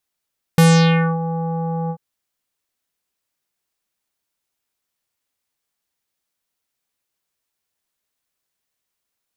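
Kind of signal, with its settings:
subtractive voice square E3 24 dB per octave, low-pass 900 Hz, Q 2.3, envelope 4 octaves, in 0.58 s, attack 1.7 ms, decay 0.60 s, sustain −14 dB, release 0.07 s, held 1.32 s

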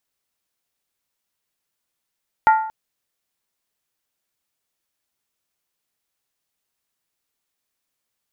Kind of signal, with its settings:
struck skin length 0.23 s, lowest mode 878 Hz, decay 0.62 s, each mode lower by 8 dB, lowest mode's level −8 dB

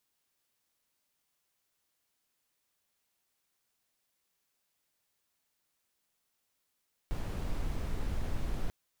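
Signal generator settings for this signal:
noise brown, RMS −32.5 dBFS 1.59 s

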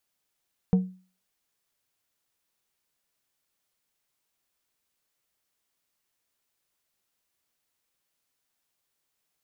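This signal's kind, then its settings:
struck glass plate, lowest mode 185 Hz, decay 0.38 s, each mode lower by 11 dB, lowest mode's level −14 dB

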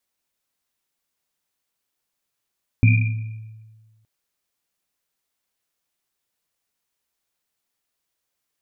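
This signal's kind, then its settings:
drum after Risset length 1.22 s, pitch 110 Hz, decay 1.53 s, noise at 2,400 Hz, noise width 120 Hz, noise 25%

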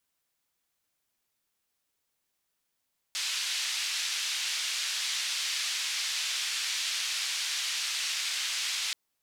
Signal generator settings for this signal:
band-limited noise 2,500–4,800 Hz, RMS −32 dBFS 5.78 s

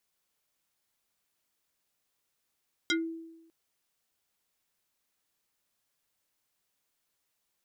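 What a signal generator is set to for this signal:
two-operator FM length 0.60 s, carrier 328 Hz, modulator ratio 5.38, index 3.5, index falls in 0.17 s exponential, decay 0.98 s, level −23 dB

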